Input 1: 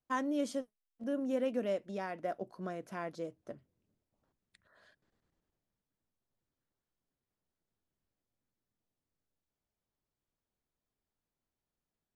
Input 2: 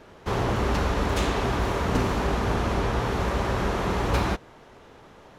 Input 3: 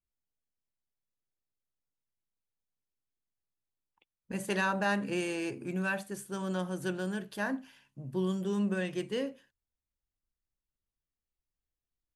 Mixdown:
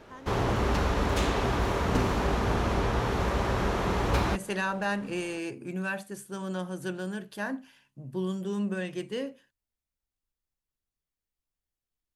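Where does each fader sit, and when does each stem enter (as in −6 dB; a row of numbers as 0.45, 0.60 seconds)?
−13.5, −2.0, 0.0 decibels; 0.00, 0.00, 0.00 seconds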